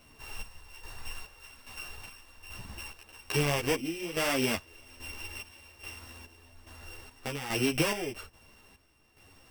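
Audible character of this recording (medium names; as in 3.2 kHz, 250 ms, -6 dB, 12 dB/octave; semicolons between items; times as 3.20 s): a buzz of ramps at a fixed pitch in blocks of 16 samples; chopped level 1.2 Hz, depth 65%, duty 50%; a shimmering, thickened sound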